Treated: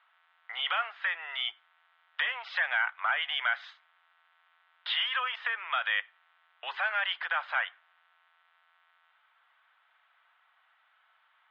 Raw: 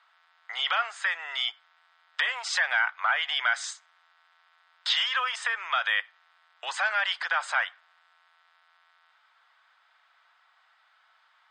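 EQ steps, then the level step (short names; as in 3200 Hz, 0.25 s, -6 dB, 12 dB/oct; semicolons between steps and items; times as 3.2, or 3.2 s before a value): synth low-pass 3200 Hz, resonance Q 2; air absorption 320 m; notches 50/100/150/200/250/300/350/400 Hz; -3.0 dB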